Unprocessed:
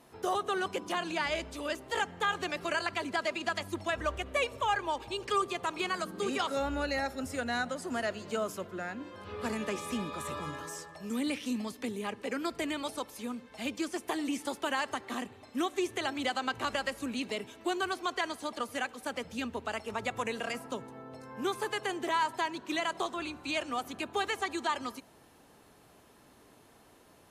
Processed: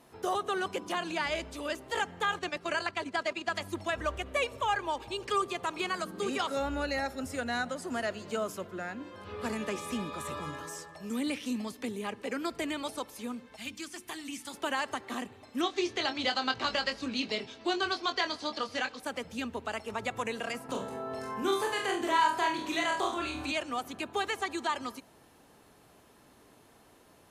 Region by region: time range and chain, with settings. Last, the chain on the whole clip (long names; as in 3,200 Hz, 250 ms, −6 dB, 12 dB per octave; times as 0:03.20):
0:02.39–0:03.54: noise gate −38 dBFS, range −8 dB + low-pass filter 9,200 Hz
0:13.56–0:14.54: parametric band 520 Hz −14 dB 2 octaves + mains-hum notches 60/120/180/240/300/360/420/480 Hz
0:15.61–0:19.00: low-pass with resonance 4,800 Hz, resonance Q 3 + double-tracking delay 23 ms −7.5 dB
0:20.69–0:23.52: flutter between parallel walls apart 4.4 metres, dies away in 0.3 s + upward compression, threshold −31 dBFS + double-tracking delay 41 ms −5 dB
whole clip: no processing